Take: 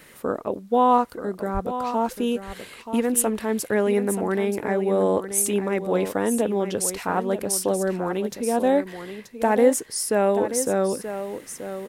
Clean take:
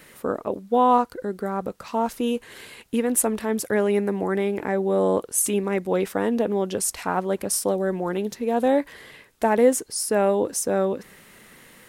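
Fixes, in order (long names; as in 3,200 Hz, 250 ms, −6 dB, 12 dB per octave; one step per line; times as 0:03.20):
high-pass at the plosives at 0:01.53
echo removal 930 ms −10.5 dB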